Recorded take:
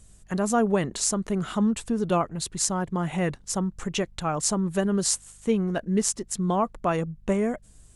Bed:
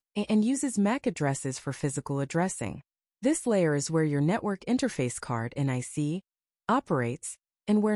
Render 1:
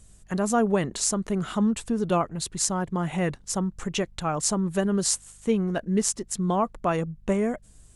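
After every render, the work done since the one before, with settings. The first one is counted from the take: nothing audible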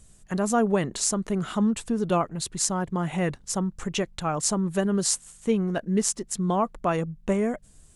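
de-hum 50 Hz, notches 2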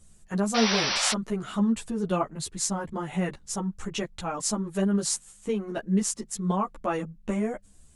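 0.54–1.13 painted sound noise 510–6000 Hz -24 dBFS; ensemble effect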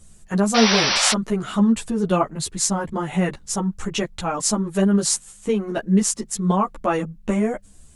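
gain +7 dB

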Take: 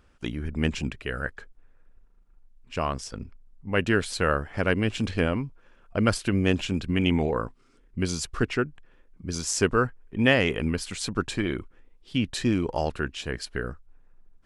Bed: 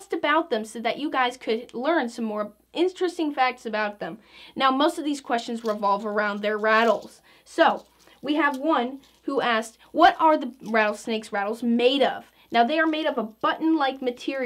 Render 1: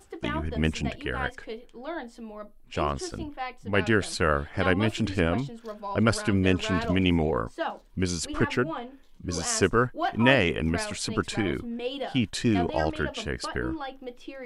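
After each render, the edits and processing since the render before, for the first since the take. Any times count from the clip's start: add bed -12.5 dB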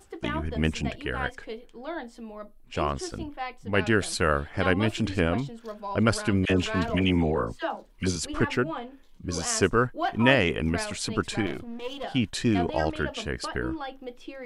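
3.98–4.4 high shelf 7800 Hz +6.5 dB; 6.45–8.16 dispersion lows, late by 51 ms, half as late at 990 Hz; 11.46–12.04 half-wave gain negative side -12 dB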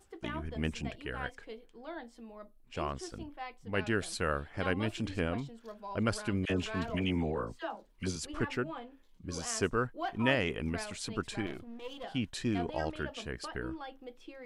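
gain -8.5 dB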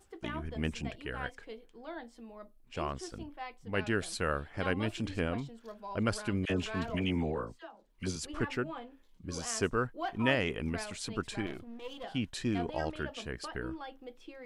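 7.34–8.1 dip -14 dB, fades 0.38 s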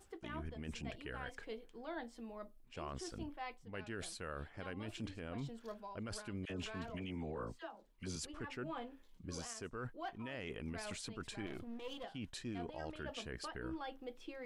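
reverse; compressor 12:1, threshold -39 dBFS, peak gain reduction 17 dB; reverse; limiter -34 dBFS, peak gain reduction 7 dB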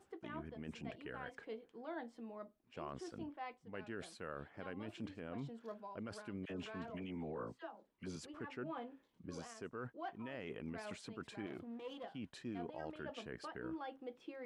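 HPF 140 Hz 12 dB/oct; high shelf 3200 Hz -12 dB

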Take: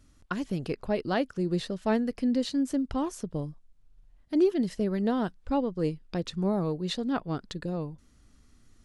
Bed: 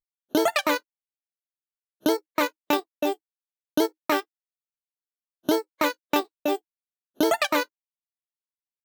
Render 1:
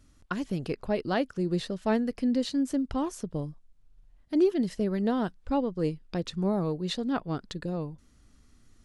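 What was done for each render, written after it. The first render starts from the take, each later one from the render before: nothing audible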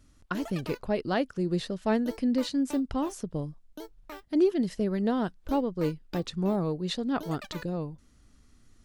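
add bed -20.5 dB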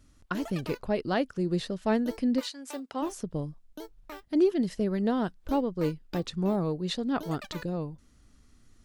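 2.39–3.01 HPF 1200 Hz -> 330 Hz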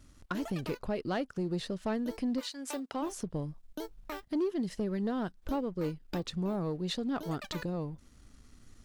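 compressor 2:1, threshold -39 dBFS, peak gain reduction 11 dB; sample leveller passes 1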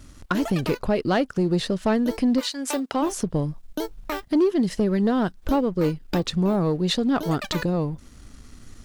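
gain +11.5 dB

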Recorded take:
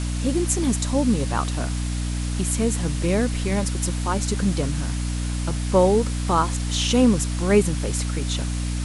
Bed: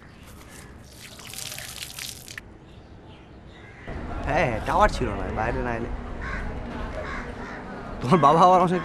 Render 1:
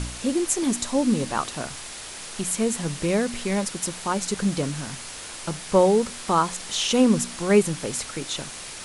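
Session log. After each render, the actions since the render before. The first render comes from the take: de-hum 60 Hz, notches 5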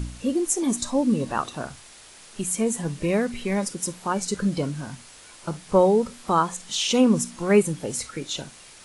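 noise print and reduce 10 dB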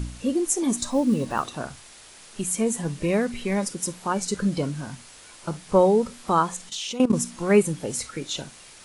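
0.77–1.47 block floating point 7-bit; 6.69–7.13 level quantiser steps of 16 dB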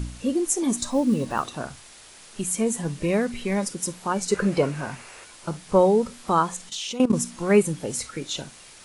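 4.3–5.24 spectral gain 330–2900 Hz +8 dB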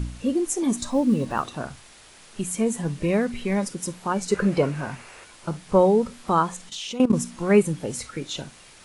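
tone controls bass +2 dB, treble -4 dB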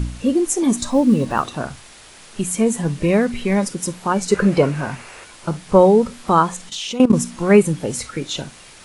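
gain +6 dB; limiter -1 dBFS, peak gain reduction 1.5 dB

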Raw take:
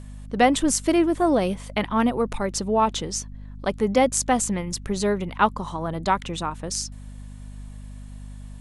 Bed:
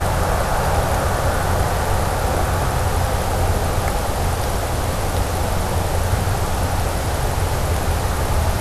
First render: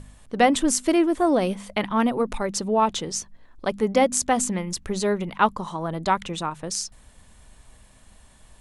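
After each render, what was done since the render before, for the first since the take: de-hum 50 Hz, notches 5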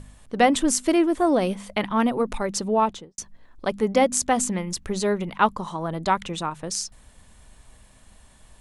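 2.77–3.18 studio fade out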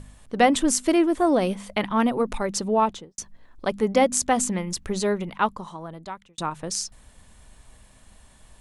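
5–6.38 fade out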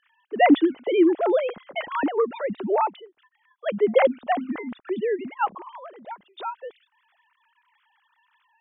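sine-wave speech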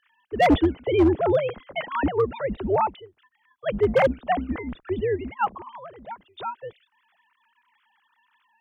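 octaver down 2 oct, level -4 dB; hard clip -12.5 dBFS, distortion -14 dB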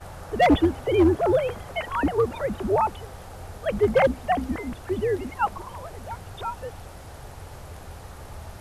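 add bed -21 dB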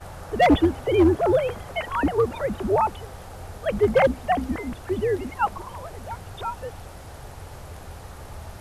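gain +1 dB

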